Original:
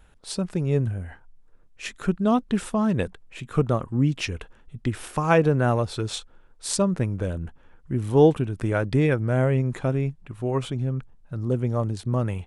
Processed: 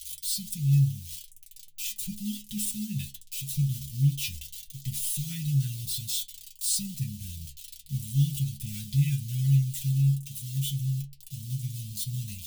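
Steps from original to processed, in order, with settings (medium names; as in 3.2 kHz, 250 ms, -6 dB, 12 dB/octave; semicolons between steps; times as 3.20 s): zero-crossing glitches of -22 dBFS; elliptic band-stop 160–3100 Hz, stop band 50 dB; inharmonic resonator 69 Hz, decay 0.36 s, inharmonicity 0.002; trim +6 dB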